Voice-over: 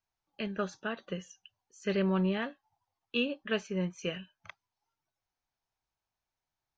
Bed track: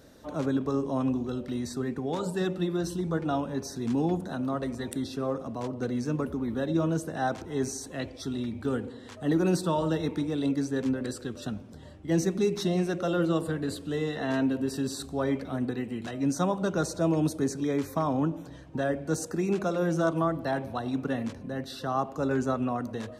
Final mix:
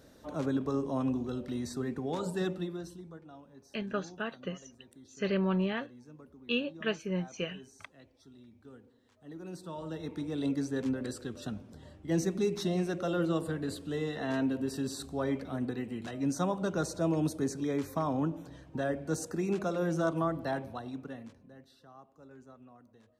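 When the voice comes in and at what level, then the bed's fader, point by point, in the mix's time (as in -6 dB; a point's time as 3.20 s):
3.35 s, -0.5 dB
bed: 2.48 s -3.5 dB
3.29 s -23 dB
9.20 s -23 dB
10.42 s -4 dB
20.51 s -4 dB
21.98 s -26 dB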